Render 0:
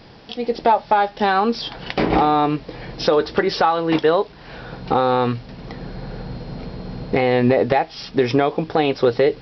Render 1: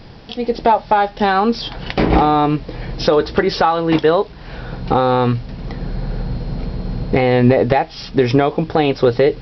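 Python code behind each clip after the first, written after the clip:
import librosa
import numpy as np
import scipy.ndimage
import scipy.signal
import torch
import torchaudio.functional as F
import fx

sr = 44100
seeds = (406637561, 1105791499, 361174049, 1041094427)

y = fx.low_shelf(x, sr, hz=120.0, db=11.5)
y = y * 10.0 ** (2.0 / 20.0)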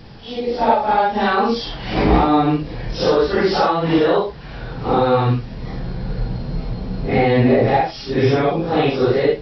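y = fx.phase_scramble(x, sr, seeds[0], window_ms=200)
y = y * 10.0 ** (-1.0 / 20.0)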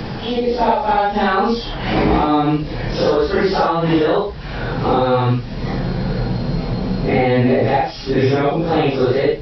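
y = fx.band_squash(x, sr, depth_pct=70)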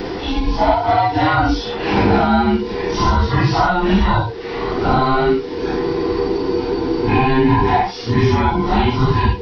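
y = fx.band_invert(x, sr, width_hz=500)
y = y * 10.0 ** (1.0 / 20.0)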